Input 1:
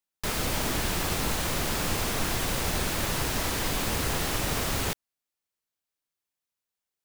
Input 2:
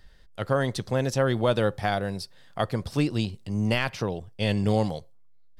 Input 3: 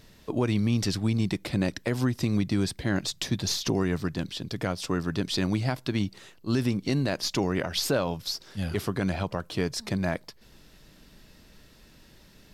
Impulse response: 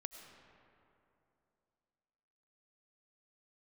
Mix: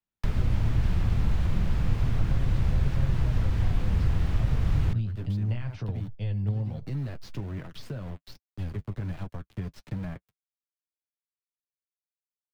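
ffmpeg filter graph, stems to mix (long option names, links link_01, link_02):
-filter_complex "[0:a]volume=-2.5dB[link_01];[1:a]lowpass=7900,adelay=1800,volume=1dB[link_02];[2:a]aeval=exprs='val(0)*gte(abs(val(0)),0.0355)':channel_layout=same,volume=-7.5dB,asplit=2[link_03][link_04];[link_04]apad=whole_len=326223[link_05];[link_02][link_05]sidechaingate=range=-10dB:threshold=-44dB:ratio=16:detection=peak[link_06];[link_06][link_03]amix=inputs=2:normalize=0,flanger=delay=6.2:depth=3.8:regen=-32:speed=1.3:shape=sinusoidal,acompressor=threshold=-34dB:ratio=10,volume=0dB[link_07];[link_01][link_07]amix=inputs=2:normalize=0,acrossover=split=7400[link_08][link_09];[link_09]acompressor=threshold=-44dB:ratio=4:attack=1:release=60[link_10];[link_08][link_10]amix=inputs=2:normalize=0,bass=frequency=250:gain=15,treble=frequency=4000:gain=-11,acrossover=split=160|330[link_11][link_12][link_13];[link_11]acompressor=threshold=-19dB:ratio=4[link_14];[link_12]acompressor=threshold=-48dB:ratio=4[link_15];[link_13]acompressor=threshold=-42dB:ratio=4[link_16];[link_14][link_15][link_16]amix=inputs=3:normalize=0"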